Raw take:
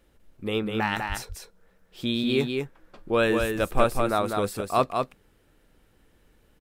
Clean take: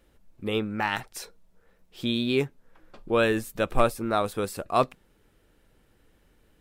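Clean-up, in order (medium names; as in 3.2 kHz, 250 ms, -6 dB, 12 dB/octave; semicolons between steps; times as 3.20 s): de-plosive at 1.08/3.39 s; inverse comb 199 ms -4.5 dB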